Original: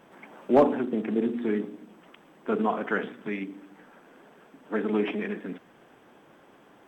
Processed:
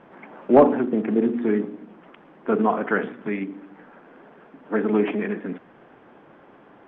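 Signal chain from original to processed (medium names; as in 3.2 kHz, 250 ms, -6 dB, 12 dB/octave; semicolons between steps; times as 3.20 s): low-pass 2.2 kHz 12 dB/octave; trim +5.5 dB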